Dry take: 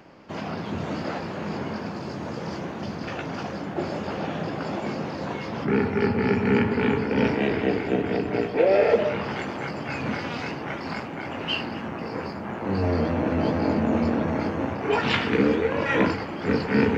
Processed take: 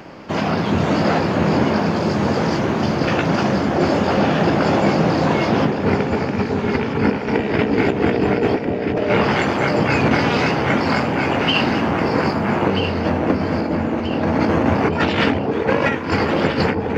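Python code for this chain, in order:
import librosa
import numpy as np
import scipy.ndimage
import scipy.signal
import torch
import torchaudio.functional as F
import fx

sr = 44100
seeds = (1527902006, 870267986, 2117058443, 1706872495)

p1 = fx.over_compress(x, sr, threshold_db=-27.0, ratio=-0.5)
p2 = p1 + fx.echo_alternate(p1, sr, ms=642, hz=910.0, feedback_pct=63, wet_db=-4.0, dry=0)
y = p2 * librosa.db_to_amplitude(9.0)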